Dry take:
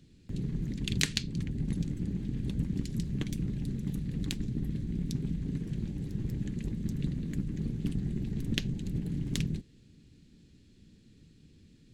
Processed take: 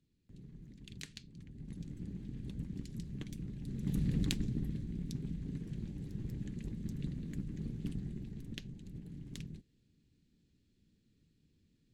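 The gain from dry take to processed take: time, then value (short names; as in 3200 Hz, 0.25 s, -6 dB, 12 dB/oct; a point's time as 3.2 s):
1.36 s -19 dB
1.99 s -10 dB
3.61 s -10 dB
4.03 s +3 dB
4.93 s -7 dB
7.93 s -7 dB
8.58 s -14 dB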